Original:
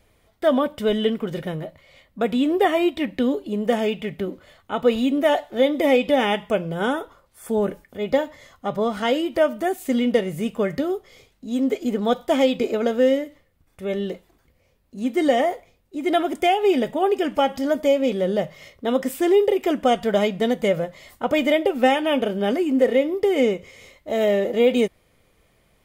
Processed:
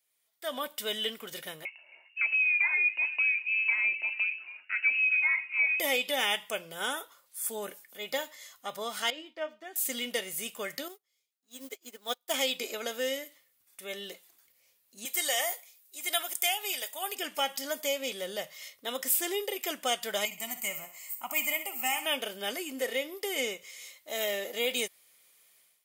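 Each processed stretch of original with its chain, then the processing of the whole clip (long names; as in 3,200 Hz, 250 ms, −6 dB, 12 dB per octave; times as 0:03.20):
0:01.65–0:05.80: downward compressor 2 to 1, threshold −25 dBFS + echo through a band-pass that steps 134 ms, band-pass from 160 Hz, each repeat 1.4 octaves, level −10.5 dB + voice inversion scrambler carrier 2,800 Hz
0:09.10–0:09.76: downward expander −33 dBFS + high-frequency loss of the air 190 metres + tuned comb filter 310 Hz, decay 0.17 s, mix 70%
0:10.88–0:12.34: mu-law and A-law mismatch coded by mu + dynamic equaliser 190 Hz, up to −5 dB, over −41 dBFS, Q 3.8 + expander for the loud parts 2.5 to 1, over −38 dBFS
0:15.05–0:17.15: high-pass filter 560 Hz + high-shelf EQ 5,900 Hz +10 dB
0:20.25–0:22.06: high shelf with overshoot 7,200 Hz +9.5 dB, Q 3 + phaser with its sweep stopped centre 2,400 Hz, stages 8 + feedback echo with a high-pass in the loop 63 ms, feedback 46%, high-pass 170 Hz, level −11 dB
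whole clip: first difference; automatic gain control gain up to 16 dB; level −8.5 dB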